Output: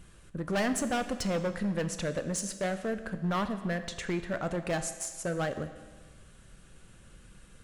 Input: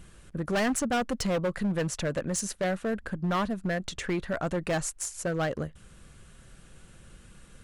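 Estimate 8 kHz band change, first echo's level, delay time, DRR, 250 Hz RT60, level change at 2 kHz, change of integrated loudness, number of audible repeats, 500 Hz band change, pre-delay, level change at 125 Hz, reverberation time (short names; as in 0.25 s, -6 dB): -2.5 dB, none, none, 9.0 dB, 1.4 s, -2.5 dB, -2.5 dB, none, -2.5 dB, 10 ms, -2.5 dB, 1.4 s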